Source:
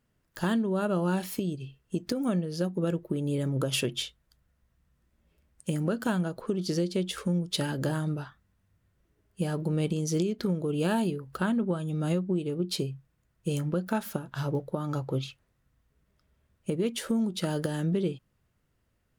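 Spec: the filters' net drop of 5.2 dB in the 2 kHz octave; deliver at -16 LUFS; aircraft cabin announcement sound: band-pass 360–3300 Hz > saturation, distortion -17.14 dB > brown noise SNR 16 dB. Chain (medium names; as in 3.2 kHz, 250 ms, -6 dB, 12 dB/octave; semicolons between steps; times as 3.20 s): band-pass 360–3300 Hz; peaking EQ 2 kHz -7 dB; saturation -25.5 dBFS; brown noise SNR 16 dB; trim +21.5 dB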